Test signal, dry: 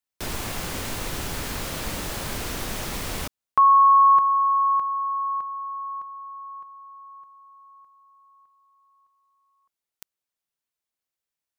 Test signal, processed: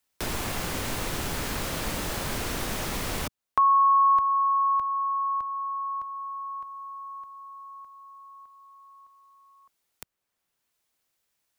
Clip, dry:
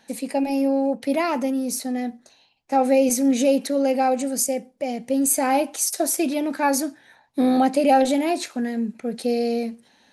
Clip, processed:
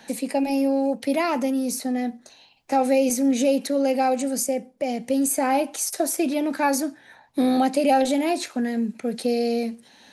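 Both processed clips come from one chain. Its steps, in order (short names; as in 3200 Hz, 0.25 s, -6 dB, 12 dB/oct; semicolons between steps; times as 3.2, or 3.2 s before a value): three-band squash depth 40%; gain -1 dB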